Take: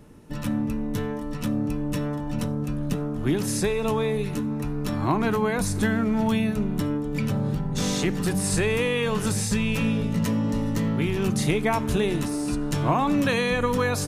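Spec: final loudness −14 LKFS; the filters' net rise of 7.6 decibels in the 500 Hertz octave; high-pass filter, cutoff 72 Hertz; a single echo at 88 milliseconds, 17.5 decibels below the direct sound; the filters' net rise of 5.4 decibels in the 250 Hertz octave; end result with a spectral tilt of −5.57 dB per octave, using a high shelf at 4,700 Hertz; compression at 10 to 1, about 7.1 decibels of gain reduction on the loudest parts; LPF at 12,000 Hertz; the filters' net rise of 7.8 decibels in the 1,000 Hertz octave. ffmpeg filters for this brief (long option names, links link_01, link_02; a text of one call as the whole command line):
ffmpeg -i in.wav -af "highpass=72,lowpass=12000,equalizer=frequency=250:width_type=o:gain=5,equalizer=frequency=500:width_type=o:gain=6,equalizer=frequency=1000:width_type=o:gain=7,highshelf=frequency=4700:gain=5.5,acompressor=threshold=-19dB:ratio=10,aecho=1:1:88:0.133,volume=10dB" out.wav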